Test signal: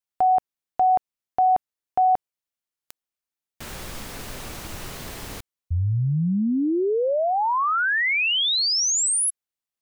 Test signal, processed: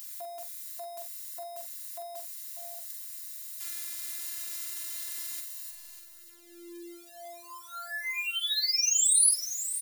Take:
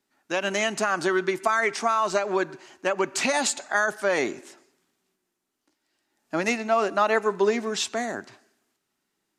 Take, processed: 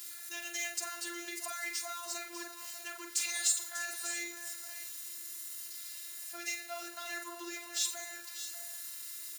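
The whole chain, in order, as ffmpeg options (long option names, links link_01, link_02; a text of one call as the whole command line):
ffmpeg -i in.wav -filter_complex "[0:a]aeval=exprs='val(0)+0.5*0.0188*sgn(val(0))':channel_layout=same,aderivative,bandreject=frequency=60:width_type=h:width=6,bandreject=frequency=120:width_type=h:width=6,bandreject=frequency=180:width_type=h:width=6,acrossover=split=760|2000[link_01][link_02][link_03];[link_02]asoftclip=type=tanh:threshold=-38.5dB[link_04];[link_01][link_04][link_03]amix=inputs=3:normalize=0,afftfilt=real='hypot(re,im)*cos(PI*b)':imag='0':win_size=512:overlap=0.75,asplit=2[link_05][link_06];[link_06]adelay=44,volume=-9.5dB[link_07];[link_05][link_07]amix=inputs=2:normalize=0,asplit=2[link_08][link_09];[link_09]aecho=0:1:47|594|648:0.376|0.266|0.168[link_10];[link_08][link_10]amix=inputs=2:normalize=0" out.wav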